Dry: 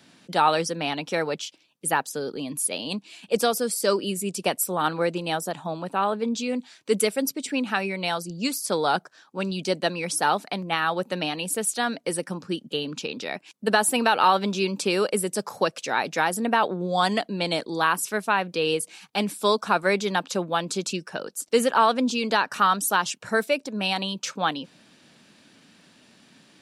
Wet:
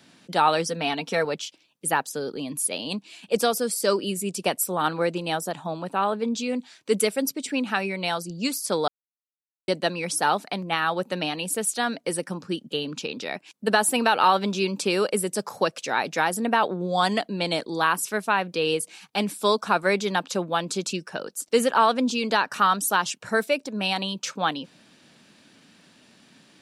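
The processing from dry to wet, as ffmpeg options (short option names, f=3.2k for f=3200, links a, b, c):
-filter_complex "[0:a]asettb=1/sr,asplit=3[a][b][c];[a]atrim=end=0.674[d];[b]atrim=start=0.67:end=1.25,asetpts=PTS-STARTPTS,afade=t=in:d=0.004:c=qsin,afade=t=out:st=0.576:d=0.004:c=qsin,aecho=1:1:4.4:0.57,atrim=end_sample=25578[e];[c]atrim=start=1.246[f];[d][e]acrossfade=d=0.004:c1=hsin:c2=qsin[g];[g][f]acrossfade=d=0.004:c1=qsin:c2=hsin,asplit=3[h][i][j];[h]atrim=end=8.88,asetpts=PTS-STARTPTS,afade=t=out:st=8.876:d=0.004:c=hsin[k];[i]atrim=start=8.88:end=9.68,asetpts=PTS-STARTPTS,volume=0[l];[j]atrim=start=9.68,asetpts=PTS-STARTPTS,afade=t=in:d=0.004:c=hsin[m];[k][l][m]concat=n=3:v=0:a=1"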